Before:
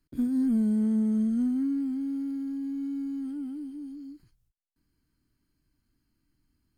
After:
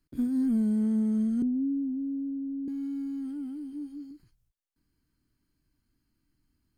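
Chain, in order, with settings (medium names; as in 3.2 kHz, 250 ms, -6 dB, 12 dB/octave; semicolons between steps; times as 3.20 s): 1.42–2.68 s: steep low-pass 660 Hz 48 dB/octave; 3.71–4.11 s: doubling 17 ms -5 dB; trim -1 dB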